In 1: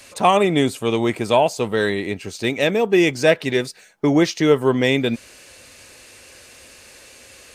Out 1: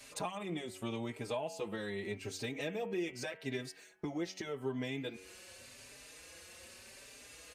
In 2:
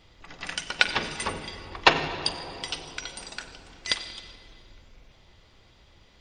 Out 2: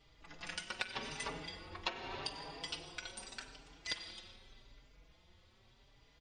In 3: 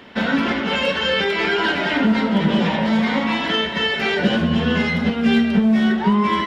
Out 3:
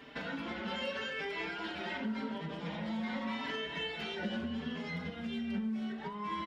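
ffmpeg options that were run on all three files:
-filter_complex "[0:a]bandreject=f=93.47:t=h:w=4,bandreject=f=186.94:t=h:w=4,bandreject=f=280.41:t=h:w=4,bandreject=f=373.88:t=h:w=4,bandreject=f=467.35:t=h:w=4,bandreject=f=560.82:t=h:w=4,bandreject=f=654.29:t=h:w=4,bandreject=f=747.76:t=h:w=4,bandreject=f=841.23:t=h:w=4,bandreject=f=934.7:t=h:w=4,bandreject=f=1028.17:t=h:w=4,bandreject=f=1121.64:t=h:w=4,bandreject=f=1215.11:t=h:w=4,bandreject=f=1308.58:t=h:w=4,bandreject=f=1402.05:t=h:w=4,bandreject=f=1495.52:t=h:w=4,bandreject=f=1588.99:t=h:w=4,bandreject=f=1682.46:t=h:w=4,bandreject=f=1775.93:t=h:w=4,bandreject=f=1869.4:t=h:w=4,bandreject=f=1962.87:t=h:w=4,bandreject=f=2056.34:t=h:w=4,bandreject=f=2149.81:t=h:w=4,bandreject=f=2243.28:t=h:w=4,bandreject=f=2336.75:t=h:w=4,bandreject=f=2430.22:t=h:w=4,bandreject=f=2523.69:t=h:w=4,bandreject=f=2617.16:t=h:w=4,bandreject=f=2710.63:t=h:w=4,bandreject=f=2804.1:t=h:w=4,bandreject=f=2897.57:t=h:w=4,bandreject=f=2991.04:t=h:w=4,bandreject=f=3084.51:t=h:w=4,bandreject=f=3177.98:t=h:w=4,bandreject=f=3271.45:t=h:w=4,acompressor=threshold=0.0501:ratio=10,asplit=2[s0][s1];[s1]adelay=4.6,afreqshift=0.84[s2];[s0][s2]amix=inputs=2:normalize=1,volume=0.501"

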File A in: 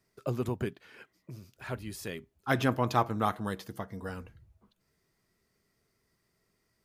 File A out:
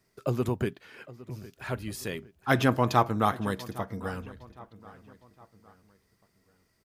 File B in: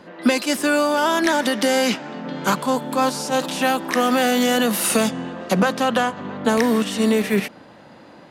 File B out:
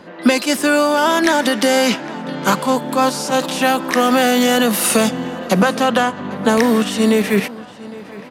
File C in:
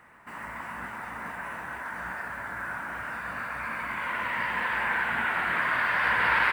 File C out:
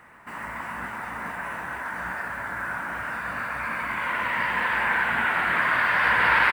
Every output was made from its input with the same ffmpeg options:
-filter_complex "[0:a]asplit=2[s0][s1];[s1]adelay=810,lowpass=f=4100:p=1,volume=0.119,asplit=2[s2][s3];[s3]adelay=810,lowpass=f=4100:p=1,volume=0.43,asplit=2[s4][s5];[s5]adelay=810,lowpass=f=4100:p=1,volume=0.43[s6];[s0][s2][s4][s6]amix=inputs=4:normalize=0,volume=1.58"

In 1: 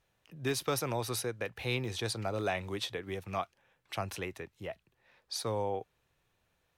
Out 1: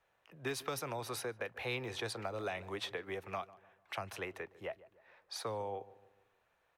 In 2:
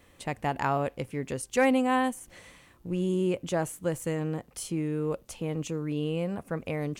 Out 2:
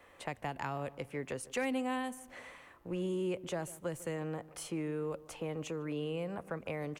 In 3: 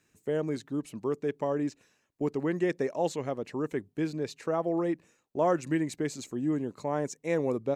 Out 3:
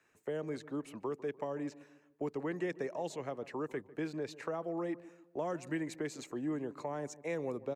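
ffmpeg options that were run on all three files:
-filter_complex "[0:a]acrossover=split=440 2300:gain=0.2 1 0.251[s0][s1][s2];[s0][s1][s2]amix=inputs=3:normalize=0,acrossover=split=270|3000[s3][s4][s5];[s4]acompressor=threshold=0.00708:ratio=6[s6];[s3][s6][s5]amix=inputs=3:normalize=0,asplit=2[s7][s8];[s8]adelay=149,lowpass=f=1100:p=1,volume=0.141,asplit=2[s9][s10];[s10]adelay=149,lowpass=f=1100:p=1,volume=0.48,asplit=2[s11][s12];[s12]adelay=149,lowpass=f=1100:p=1,volume=0.48,asplit=2[s13][s14];[s14]adelay=149,lowpass=f=1100:p=1,volume=0.48[s15];[s7][s9][s11][s13][s15]amix=inputs=5:normalize=0,volume=1.68"

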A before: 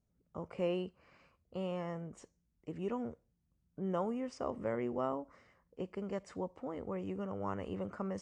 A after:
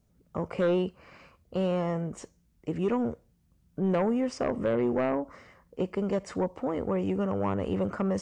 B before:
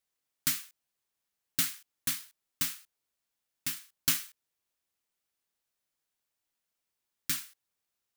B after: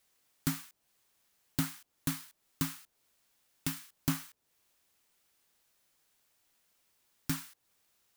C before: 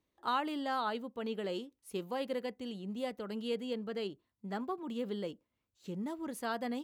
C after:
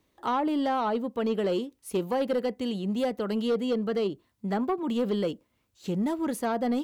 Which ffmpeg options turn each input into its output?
-filter_complex "[0:a]acrossover=split=960[s0][s1];[s1]acompressor=threshold=0.00355:ratio=5[s2];[s0][s2]amix=inputs=2:normalize=0,aeval=exprs='0.0944*sin(PI/2*2.51*val(0)/0.0944)':c=same"

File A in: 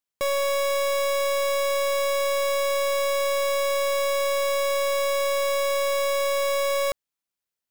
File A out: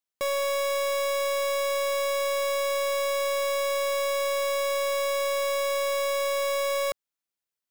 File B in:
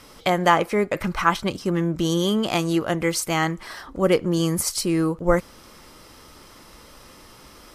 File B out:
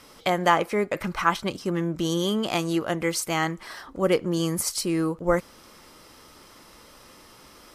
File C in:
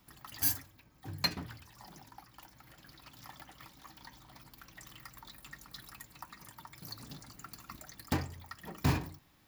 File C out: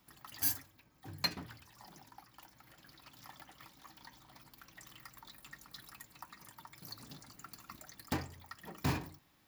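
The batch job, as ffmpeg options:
-af "lowshelf=f=110:g=-7,volume=0.75"

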